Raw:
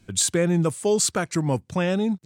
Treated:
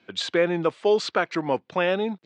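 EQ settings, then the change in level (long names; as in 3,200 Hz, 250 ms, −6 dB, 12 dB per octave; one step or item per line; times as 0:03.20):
high-pass filter 400 Hz 12 dB per octave
low-pass filter 3,800 Hz 24 dB per octave
+4.0 dB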